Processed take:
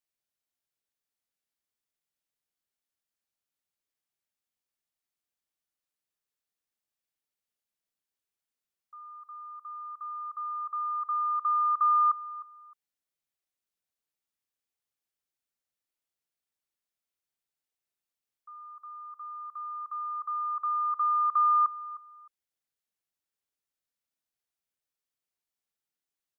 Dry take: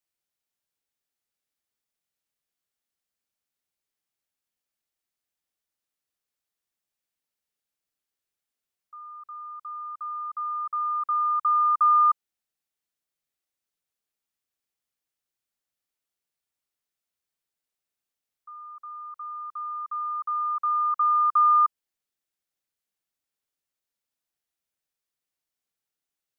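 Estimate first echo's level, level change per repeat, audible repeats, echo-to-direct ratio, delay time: -17.0 dB, -12.5 dB, 2, -17.0 dB, 308 ms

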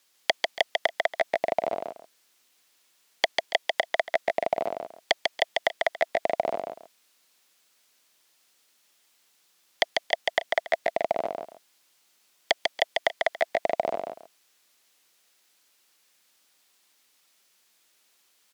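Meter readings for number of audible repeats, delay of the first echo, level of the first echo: 2, 145 ms, -3.5 dB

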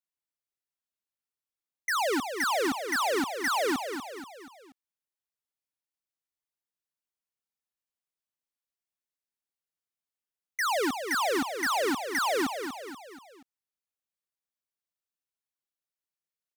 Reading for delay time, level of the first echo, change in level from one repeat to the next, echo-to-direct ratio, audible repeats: 240 ms, -8.0 dB, -6.0 dB, -7.0 dB, 4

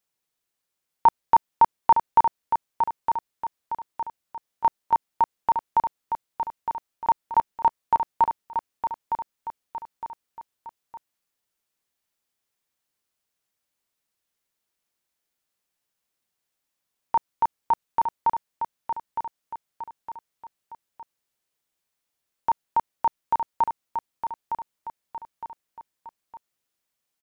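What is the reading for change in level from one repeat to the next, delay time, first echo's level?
-7.0 dB, 911 ms, -7.0 dB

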